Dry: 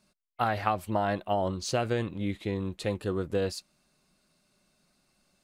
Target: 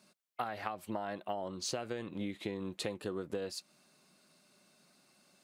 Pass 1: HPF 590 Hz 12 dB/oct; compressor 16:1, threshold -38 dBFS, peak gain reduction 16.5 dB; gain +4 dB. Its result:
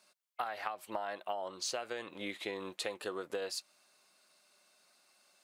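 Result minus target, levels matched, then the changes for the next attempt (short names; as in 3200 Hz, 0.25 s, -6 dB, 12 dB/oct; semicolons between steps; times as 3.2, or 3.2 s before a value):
250 Hz band -7.0 dB
change: HPF 180 Hz 12 dB/oct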